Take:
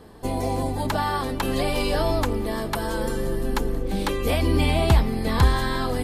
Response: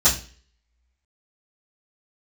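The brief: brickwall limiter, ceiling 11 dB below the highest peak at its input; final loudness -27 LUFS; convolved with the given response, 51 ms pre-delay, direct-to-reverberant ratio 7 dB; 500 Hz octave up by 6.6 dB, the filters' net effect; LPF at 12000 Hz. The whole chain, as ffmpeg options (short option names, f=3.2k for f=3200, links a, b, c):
-filter_complex "[0:a]lowpass=12k,equalizer=f=500:t=o:g=8.5,alimiter=limit=-15dB:level=0:latency=1,asplit=2[a][b];[1:a]atrim=start_sample=2205,adelay=51[c];[b][c]afir=irnorm=-1:irlink=0,volume=-23.5dB[d];[a][d]amix=inputs=2:normalize=0,volume=-4dB"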